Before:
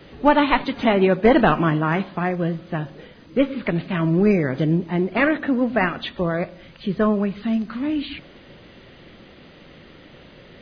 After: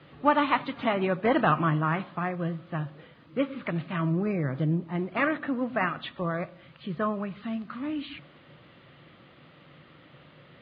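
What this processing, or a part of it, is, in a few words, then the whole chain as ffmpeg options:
guitar cabinet: -filter_complex "[0:a]highpass=97,equalizer=f=140:t=q:w=4:g=8,equalizer=f=210:t=q:w=4:g=-5,equalizer=f=410:t=q:w=4:g=-6,equalizer=f=1200:t=q:w=4:g=7,lowpass=f=4000:w=0.5412,lowpass=f=4000:w=1.3066,asettb=1/sr,asplit=3[s0][s1][s2];[s0]atrim=end=4.124[s3];[s1]atrim=start=4.12:end=4.95,asetpts=PTS-STARTPTS,afade=t=in:d=0.004:c=qsin,afade=t=out:st=0.826:d=0.004:c=qsin,equalizer=f=2600:w=0.55:g=-4.5[s4];[s2]atrim=start=4.946[s5];[s3][s4]acrossfade=d=0.004:c1=hsin:c2=qsin[s6];[s6][s5]acrossfade=d=0.004:c1=qsin:c2=hsin,volume=0.422"

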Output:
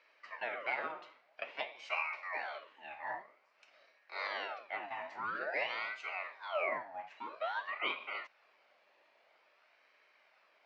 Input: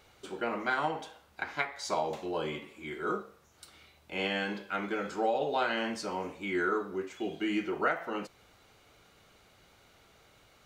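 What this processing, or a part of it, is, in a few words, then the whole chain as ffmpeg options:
voice changer toy: -af "aeval=exprs='val(0)*sin(2*PI*1100*n/s+1100*0.6/0.5*sin(2*PI*0.5*n/s))':c=same,highpass=520,equalizer=f=610:t=q:w=4:g=9,equalizer=f=2300:t=q:w=4:g=6,equalizer=f=3500:t=q:w=4:g=-6,lowpass=f=4400:w=0.5412,lowpass=f=4400:w=1.3066,volume=0.562"

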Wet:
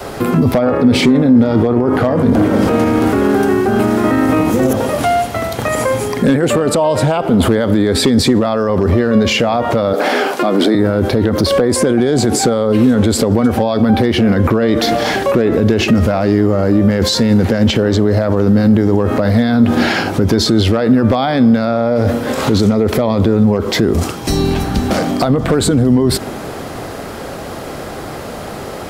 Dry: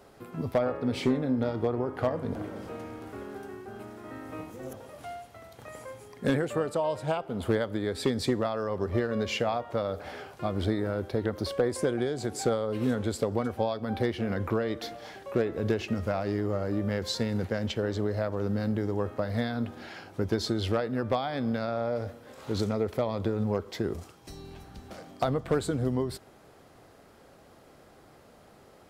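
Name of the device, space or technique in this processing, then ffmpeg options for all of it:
loud club master: -filter_complex "[0:a]asettb=1/sr,asplit=3[s0][s1][s2];[s0]atrim=end=9.934[s3];[s1]atrim=start=9.93:end=10.75,asetpts=PTS-STARTPTS,afade=t=in:d=0.004:c=qsin,afade=t=out:st=0.816:d=0.004:c=qsin,highpass=f=240:w=0.5412,highpass=f=240:w=1.3066[s4];[s2]atrim=start=10.746[s5];[s3][s4]acrossfade=d=0.004:c1=hsin:c2=qsin[s6];[s6][s5]acrossfade=d=0.004:c1=qsin:c2=hsin,acompressor=threshold=0.0282:ratio=2.5,asoftclip=type=hard:threshold=0.0708,alimiter=level_in=53.1:limit=0.891:release=50:level=0:latency=1,adynamicequalizer=threshold=0.0708:dfrequency=240:dqfactor=1.8:tfrequency=240:tqfactor=1.8:attack=5:release=100:ratio=0.375:range=3:mode=boostabove:tftype=bell,volume=0.531"

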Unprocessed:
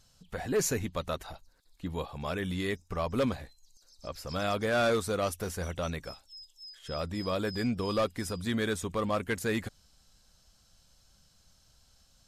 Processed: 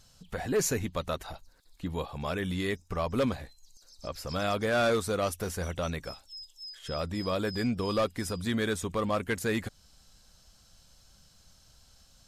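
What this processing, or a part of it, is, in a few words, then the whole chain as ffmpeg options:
parallel compression: -filter_complex "[0:a]asplit=2[s0][s1];[s1]acompressor=threshold=0.00708:ratio=6,volume=0.631[s2];[s0][s2]amix=inputs=2:normalize=0"

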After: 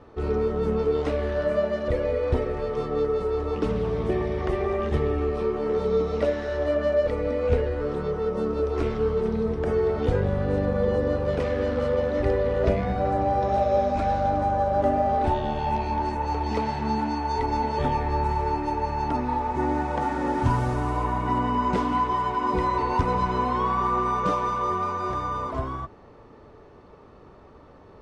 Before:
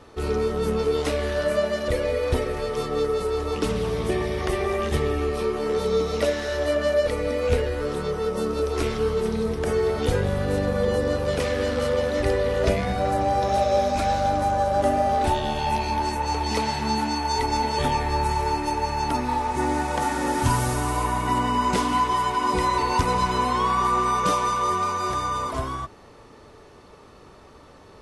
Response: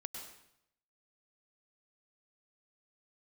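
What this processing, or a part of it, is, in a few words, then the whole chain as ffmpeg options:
through cloth: -af "lowpass=7200,highshelf=f=2600:g=-16"

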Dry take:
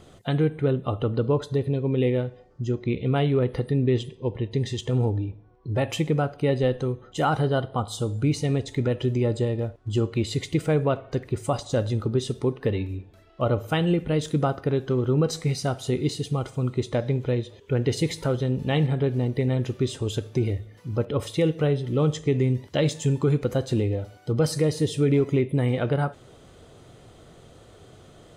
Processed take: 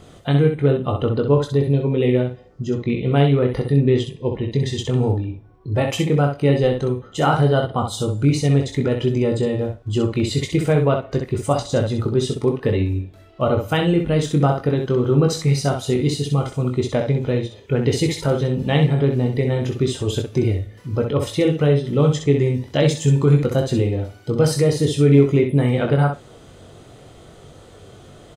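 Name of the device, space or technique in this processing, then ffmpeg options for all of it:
slapback doubling: -filter_complex "[0:a]asplit=3[s0][s1][s2];[s1]adelay=21,volume=0.531[s3];[s2]adelay=64,volume=0.501[s4];[s0][s3][s4]amix=inputs=3:normalize=0,volume=1.58"

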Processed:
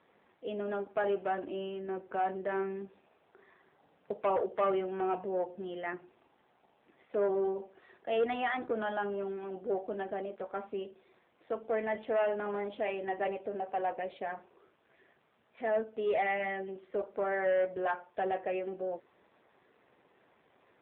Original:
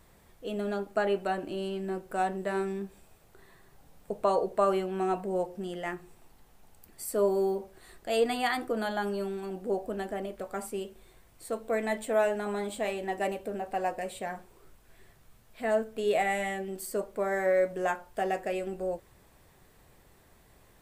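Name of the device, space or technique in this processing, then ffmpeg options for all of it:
telephone: -filter_complex "[0:a]asettb=1/sr,asplit=3[s0][s1][s2];[s0]atrim=end=8.944[s3];[s1]atrim=start=8.94:end=9.61,asetpts=PTS-STARTPTS,afade=t=in:d=0.004:c=qsin,afade=t=out:st=0.666:d=0.004:c=qsin,equalizer=f=140:t=o:w=0.26:g=-2.5[s4];[s2]atrim=start=9.606[s5];[s3][s4]acrossfade=d=0.004:c1=hsin:c2=qsin[s6];[s6][s5]acrossfade=d=0.004:c1=qsin:c2=hsin,highpass=270,lowpass=3500,asoftclip=type=tanh:threshold=0.0794" -ar 8000 -c:a libopencore_amrnb -b:a 7400

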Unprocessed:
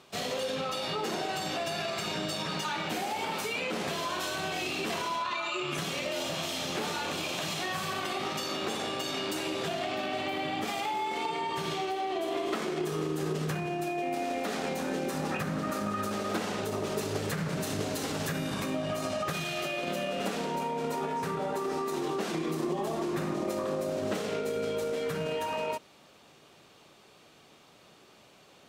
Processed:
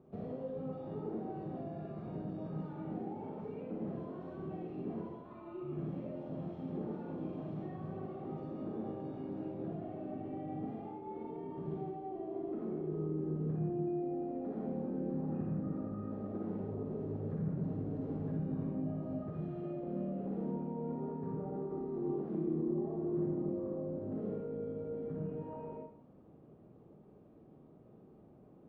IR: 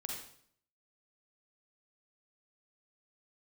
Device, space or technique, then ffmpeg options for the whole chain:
television next door: -filter_complex "[0:a]acompressor=threshold=0.0158:ratio=6,lowpass=350[s0];[1:a]atrim=start_sample=2205[s1];[s0][s1]afir=irnorm=-1:irlink=0,volume=2"

